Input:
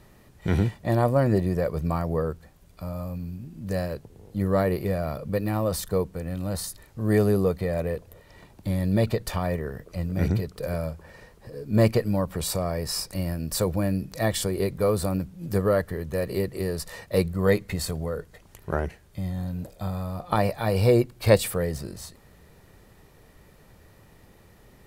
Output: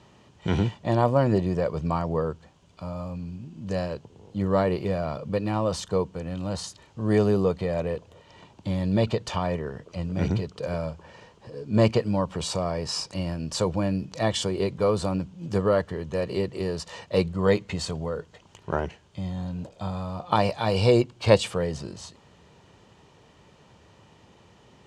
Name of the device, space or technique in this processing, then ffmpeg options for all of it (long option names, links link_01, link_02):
car door speaker: -filter_complex "[0:a]highpass=88,equalizer=frequency=950:width_type=q:width=4:gain=6,equalizer=frequency=1900:width_type=q:width=4:gain=-4,equalizer=frequency=3000:width_type=q:width=4:gain=8,equalizer=frequency=6600:width_type=q:width=4:gain=3,lowpass=frequency=7300:width=0.5412,lowpass=frequency=7300:width=1.3066,asettb=1/sr,asplit=3[link_01][link_02][link_03];[link_01]atrim=end=19.694[link_04];[link_02]atrim=start=19.69:end=21.02,asetpts=PTS-STARTPTS,afade=type=in:duration=0.004:curve=qsin,afade=type=out:start_time=1.326:duration=0.004:curve=qsin,adynamicequalizer=threshold=0.01:dfrequency=3000:dqfactor=0.7:tfrequency=3000:tqfactor=0.7:attack=5:release=100:ratio=0.375:range=2.5:mode=boostabove:tftype=highshelf[link_05];[link_03]atrim=start=21.016[link_06];[link_04][link_05]acrossfade=duration=0.004:curve1=hsin:curve2=qsin[link_07];[link_07][link_06]acrossfade=duration=0.004:curve1=qsin:curve2=hsin"